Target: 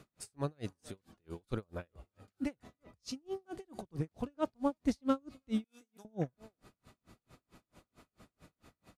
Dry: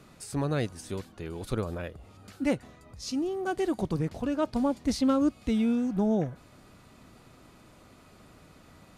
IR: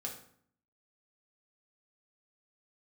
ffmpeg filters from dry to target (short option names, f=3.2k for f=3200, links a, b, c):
-filter_complex "[0:a]asettb=1/sr,asplit=3[a][b][c];[a]atrim=end=5.644[d];[b]atrim=start=5.64:end=6.05,asetpts=PTS-STARTPTS,afade=t=in:d=0.004:c=qsin,afade=t=out:st=0.406:d=0.004:c=qsin,aderivative[e];[c]atrim=start=6.046[f];[d][e]acrossfade=d=0.004:c1=hsin:c2=qsin[g];[g][f]acrossfade=d=0.004:c1=qsin:c2=hsin,asplit=2[h][i];[i]adelay=330,highpass=300,lowpass=3.4k,asoftclip=type=hard:threshold=-23.5dB,volume=-20dB[j];[h][j]amix=inputs=2:normalize=0,aeval=exprs='val(0)*pow(10,-40*(0.5-0.5*cos(2*PI*4.5*n/s))/20)':c=same,volume=-2.5dB"